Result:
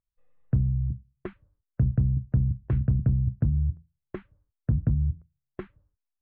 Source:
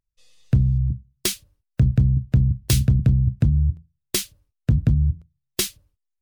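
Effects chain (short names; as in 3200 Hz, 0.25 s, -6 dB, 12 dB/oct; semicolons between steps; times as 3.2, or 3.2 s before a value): inverse Chebyshev low-pass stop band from 5100 Hz, stop band 60 dB; gain -6 dB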